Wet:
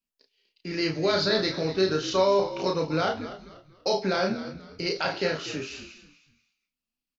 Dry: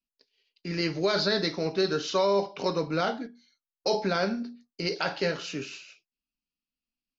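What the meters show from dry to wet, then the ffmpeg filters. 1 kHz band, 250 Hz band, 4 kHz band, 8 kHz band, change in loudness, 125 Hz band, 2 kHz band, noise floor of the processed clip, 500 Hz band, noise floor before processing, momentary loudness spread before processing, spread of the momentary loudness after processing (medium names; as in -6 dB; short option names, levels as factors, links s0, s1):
+1.5 dB, +1.5 dB, +1.5 dB, no reading, +2.0 dB, +1.5 dB, +1.5 dB, under -85 dBFS, +2.0 dB, under -85 dBFS, 13 LU, 16 LU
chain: -filter_complex "[0:a]asplit=2[s0][s1];[s1]adelay=32,volume=0.631[s2];[s0][s2]amix=inputs=2:normalize=0,asplit=4[s3][s4][s5][s6];[s4]adelay=242,afreqshift=-56,volume=0.2[s7];[s5]adelay=484,afreqshift=-112,volume=0.0661[s8];[s6]adelay=726,afreqshift=-168,volume=0.0216[s9];[s3][s7][s8][s9]amix=inputs=4:normalize=0"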